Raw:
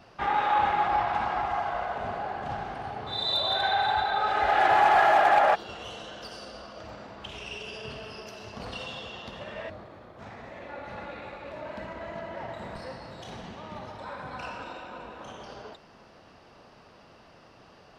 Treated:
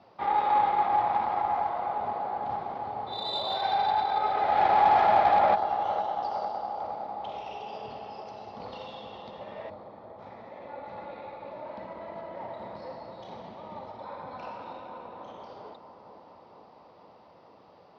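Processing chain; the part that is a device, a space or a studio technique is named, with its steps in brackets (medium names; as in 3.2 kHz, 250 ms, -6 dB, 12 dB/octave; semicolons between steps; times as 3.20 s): analogue delay pedal into a guitar amplifier (bucket-brigade echo 460 ms, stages 4096, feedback 71%, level -9.5 dB; valve stage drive 17 dB, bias 0.7; cabinet simulation 110–4500 Hz, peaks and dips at 140 Hz -4 dB, 520 Hz +4 dB, 870 Hz +6 dB, 1.6 kHz -9 dB, 2.8 kHz -8 dB)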